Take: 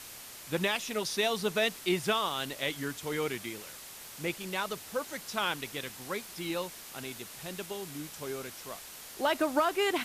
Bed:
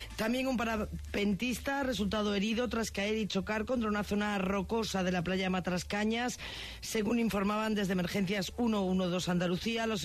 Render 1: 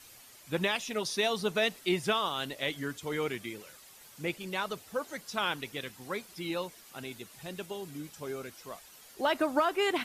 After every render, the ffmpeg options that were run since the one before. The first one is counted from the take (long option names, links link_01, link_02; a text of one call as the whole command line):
ffmpeg -i in.wav -af "afftdn=noise_reduction=10:noise_floor=-47" out.wav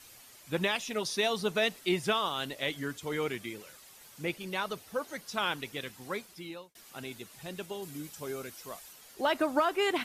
ffmpeg -i in.wav -filter_complex "[0:a]asettb=1/sr,asplit=3[link_01][link_02][link_03];[link_01]atrim=end=4.244[link_04];[link_02]atrim=start=4.24:end=5.28,asetpts=PTS-STARTPTS,afade=type=in:duration=0.004:curve=qsin,afade=type=out:start_time=1.036:duration=0.004:curve=qsin,bandreject=frequency=7400:width=12[link_05];[link_03]atrim=start=5.276[link_06];[link_04][link_05]acrossfade=duration=0.004:curve1=hsin:curve2=qsin[link_07];[link_07][link_06]acrossfade=duration=0.004:curve1=qsin:curve2=hsin,asettb=1/sr,asplit=3[link_08][link_09][link_10];[link_08]atrim=end=7.824[link_11];[link_09]atrim=start=7.82:end=8.93,asetpts=PTS-STARTPTS,afade=type=in:duration=0.004:curve=qsin,afade=type=out:start_time=1.106:duration=0.004:curve=qsin,highshelf=frequency=6000:gain=6[link_12];[link_10]atrim=start=8.926[link_13];[link_11][link_12]acrossfade=duration=0.004:curve1=hsin:curve2=qsin[link_14];[link_14][link_13]acrossfade=duration=0.004:curve1=qsin:curve2=hsin,asplit=2[link_15][link_16];[link_15]atrim=end=6.75,asetpts=PTS-STARTPTS,afade=type=out:start_time=6.15:duration=0.6[link_17];[link_16]atrim=start=6.75,asetpts=PTS-STARTPTS,afade=type=in:duration=0.004:curve=hsin[link_18];[link_17][link_18]concat=n=2:v=0:a=1" out.wav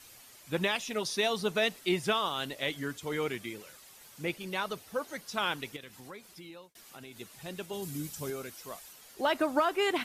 ffmpeg -i in.wav -filter_complex "[0:a]asettb=1/sr,asplit=3[link_01][link_02][link_03];[link_01]atrim=end=5.764[link_04];[link_02]atrim=start=5.76:end=7.17,asetpts=PTS-STARTPTS,afade=type=in:duration=0.004:curve=qsin,afade=type=out:start_time=1.406:duration=0.004:curve=qsin,acompressor=threshold=-45dB:ratio=3:attack=3.2:release=140:knee=1:detection=peak[link_05];[link_03]atrim=start=7.166[link_06];[link_04][link_05]acrossfade=duration=0.004:curve1=hsin:curve2=qsin[link_07];[link_07][link_06]acrossfade=duration=0.004:curve1=qsin:curve2=hsin,asettb=1/sr,asplit=3[link_08][link_09][link_10];[link_08]atrim=end=7.734[link_11];[link_09]atrim=start=7.73:end=8.3,asetpts=PTS-STARTPTS,afade=type=in:duration=0.004:curve=qsin,afade=type=out:start_time=0.566:duration=0.004:curve=qsin,bass=frequency=250:gain=8,treble=frequency=4000:gain=5[link_12];[link_10]atrim=start=8.296[link_13];[link_11][link_12]acrossfade=duration=0.004:curve1=hsin:curve2=qsin[link_14];[link_14][link_13]acrossfade=duration=0.004:curve1=qsin:curve2=hsin" out.wav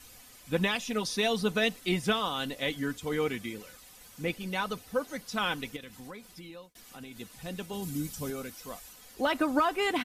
ffmpeg -i in.wav -af "lowshelf=frequency=150:gain=12,aecho=1:1:4:0.45" out.wav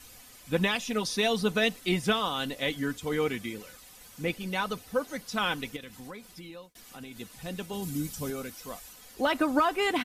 ffmpeg -i in.wav -af "volume=1.5dB" out.wav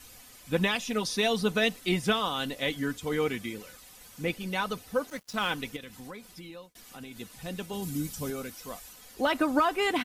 ffmpeg -i in.wav -filter_complex "[0:a]asettb=1/sr,asplit=3[link_01][link_02][link_03];[link_01]atrim=end=5.104[link_04];[link_02]atrim=start=5.1:end=5.51,asetpts=PTS-STARTPTS,afade=type=in:duration=0.004:curve=qsin,afade=type=out:start_time=0.406:duration=0.004:curve=qsin,aeval=exprs='sgn(val(0))*max(abs(val(0))-0.00562,0)':channel_layout=same[link_05];[link_03]atrim=start=5.506[link_06];[link_04][link_05]acrossfade=duration=0.004:curve1=hsin:curve2=qsin[link_07];[link_07][link_06]acrossfade=duration=0.004:curve1=qsin:curve2=hsin" out.wav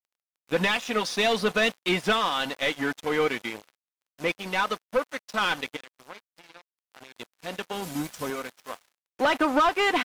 ffmpeg -i in.wav -filter_complex "[0:a]aeval=exprs='sgn(val(0))*max(abs(val(0))-0.00944,0)':channel_layout=same,asplit=2[link_01][link_02];[link_02]highpass=frequency=720:poles=1,volume=18dB,asoftclip=type=tanh:threshold=-12.5dB[link_03];[link_01][link_03]amix=inputs=2:normalize=0,lowpass=frequency=2700:poles=1,volume=-6dB" out.wav